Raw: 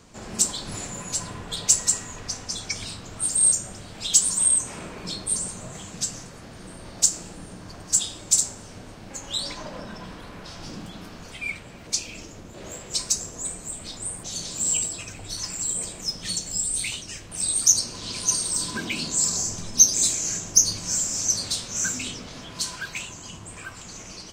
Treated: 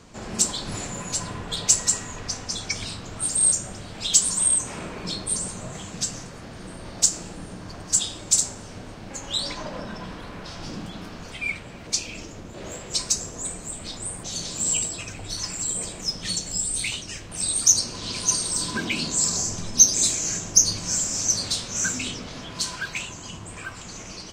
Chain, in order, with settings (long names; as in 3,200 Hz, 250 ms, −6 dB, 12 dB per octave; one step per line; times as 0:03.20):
high-shelf EQ 9,500 Hz −9 dB
level +3 dB